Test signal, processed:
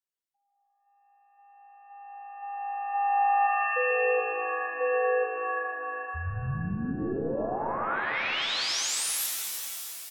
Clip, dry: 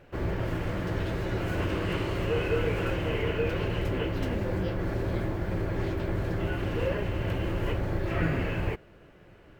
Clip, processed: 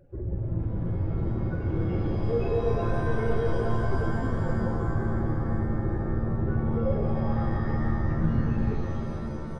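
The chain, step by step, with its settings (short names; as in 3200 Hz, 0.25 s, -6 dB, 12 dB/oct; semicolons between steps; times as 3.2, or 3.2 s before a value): spectral contrast raised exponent 2.5; frequency-shifting echo 0.134 s, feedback 41%, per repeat -55 Hz, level -13 dB; shimmer reverb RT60 3.3 s, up +7 st, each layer -2 dB, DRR 1 dB; gain -1.5 dB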